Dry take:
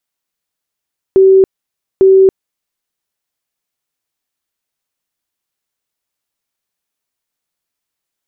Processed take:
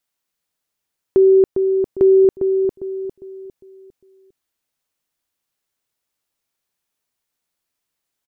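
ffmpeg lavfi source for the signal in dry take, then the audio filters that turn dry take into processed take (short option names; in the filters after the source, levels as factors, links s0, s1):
-f lavfi -i "aevalsrc='0.708*sin(2*PI*383*mod(t,0.85))*lt(mod(t,0.85),107/383)':d=1.7:s=44100"
-filter_complex "[0:a]alimiter=limit=0.422:level=0:latency=1:release=437,asplit=2[s0][s1];[s1]adelay=403,lowpass=f=840:p=1,volume=0.531,asplit=2[s2][s3];[s3]adelay=403,lowpass=f=840:p=1,volume=0.4,asplit=2[s4][s5];[s5]adelay=403,lowpass=f=840:p=1,volume=0.4,asplit=2[s6][s7];[s7]adelay=403,lowpass=f=840:p=1,volume=0.4,asplit=2[s8][s9];[s9]adelay=403,lowpass=f=840:p=1,volume=0.4[s10];[s2][s4][s6][s8][s10]amix=inputs=5:normalize=0[s11];[s0][s11]amix=inputs=2:normalize=0"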